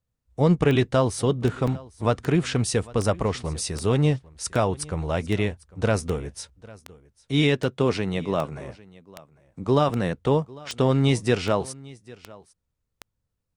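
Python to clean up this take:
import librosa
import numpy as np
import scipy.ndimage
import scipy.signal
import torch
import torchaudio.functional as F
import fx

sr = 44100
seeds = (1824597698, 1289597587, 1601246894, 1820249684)

y = fx.fix_declick_ar(x, sr, threshold=10.0)
y = fx.fix_interpolate(y, sr, at_s=(1.67, 6.49), length_ms=4.8)
y = fx.fix_echo_inverse(y, sr, delay_ms=800, level_db=-22.0)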